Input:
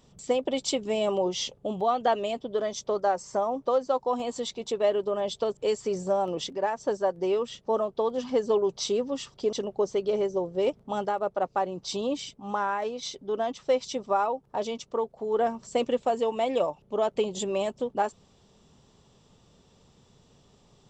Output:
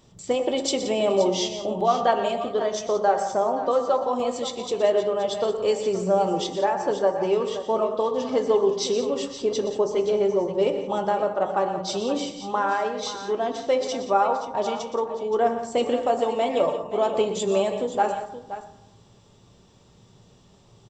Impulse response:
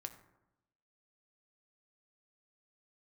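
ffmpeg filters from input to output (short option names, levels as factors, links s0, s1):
-filter_complex "[0:a]aecho=1:1:121|174|524:0.251|0.211|0.237[s0];[1:a]atrim=start_sample=2205[s1];[s0][s1]afir=irnorm=-1:irlink=0,volume=2.37"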